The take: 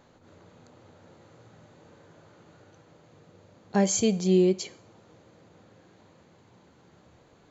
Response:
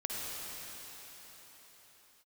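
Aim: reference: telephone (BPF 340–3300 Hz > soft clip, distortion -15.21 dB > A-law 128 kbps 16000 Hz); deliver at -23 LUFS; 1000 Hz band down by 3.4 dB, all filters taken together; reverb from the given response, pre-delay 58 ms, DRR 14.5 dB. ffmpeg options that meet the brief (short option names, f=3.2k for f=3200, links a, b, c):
-filter_complex "[0:a]equalizer=f=1k:t=o:g=-4.5,asplit=2[a][b];[1:a]atrim=start_sample=2205,adelay=58[c];[b][c]afir=irnorm=-1:irlink=0,volume=-19dB[d];[a][d]amix=inputs=2:normalize=0,highpass=340,lowpass=3.3k,asoftclip=threshold=-22.5dB,volume=10dB" -ar 16000 -c:a pcm_alaw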